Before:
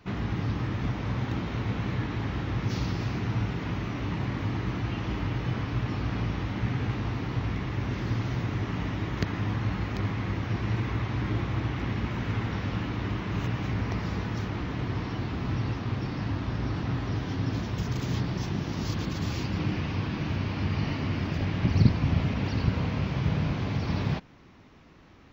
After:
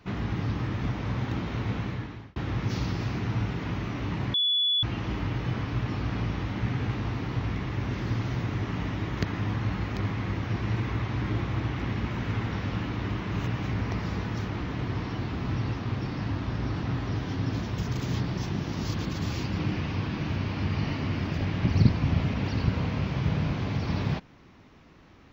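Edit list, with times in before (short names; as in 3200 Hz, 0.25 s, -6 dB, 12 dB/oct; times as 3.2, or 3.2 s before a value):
1.76–2.36 fade out
4.34–4.83 bleep 3420 Hz -21.5 dBFS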